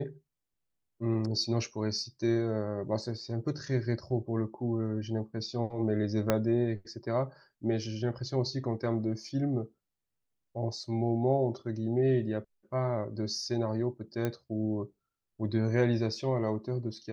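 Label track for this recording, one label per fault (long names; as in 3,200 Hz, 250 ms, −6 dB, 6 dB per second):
6.300000	6.300000	click −11 dBFS
14.250000	14.250000	click −18 dBFS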